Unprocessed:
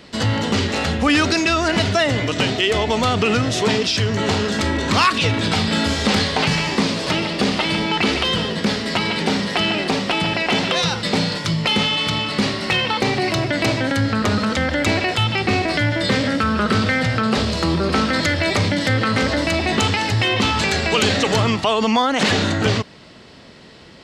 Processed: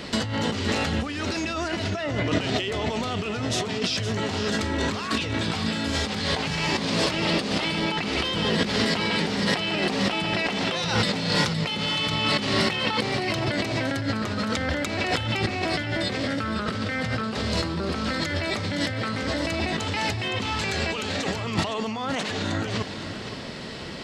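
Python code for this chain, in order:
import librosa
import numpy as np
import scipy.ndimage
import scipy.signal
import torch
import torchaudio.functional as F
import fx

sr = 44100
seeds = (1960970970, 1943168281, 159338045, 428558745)

y = fx.lowpass(x, sr, hz=2300.0, slope=6, at=(1.9, 2.41))
y = fx.over_compress(y, sr, threshold_db=-27.0, ratio=-1.0)
y = y + 10.0 ** (-10.5 / 20.0) * np.pad(y, (int(514 * sr / 1000.0), 0))[:len(y)]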